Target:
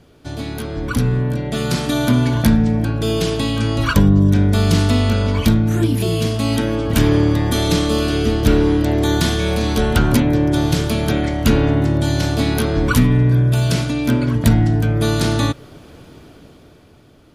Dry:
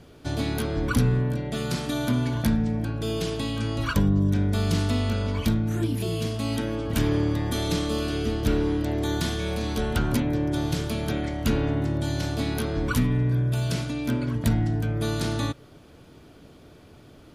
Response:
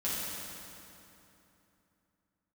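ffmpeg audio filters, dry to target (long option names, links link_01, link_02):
-af "dynaudnorm=framelen=280:gausssize=9:maxgain=11.5dB"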